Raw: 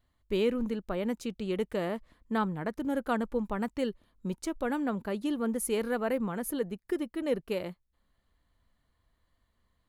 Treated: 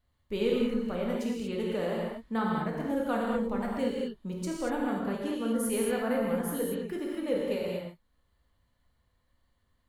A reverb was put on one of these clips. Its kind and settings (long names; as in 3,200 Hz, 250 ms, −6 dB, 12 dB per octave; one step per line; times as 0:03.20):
reverb whose tail is shaped and stops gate 260 ms flat, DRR −3 dB
level −4 dB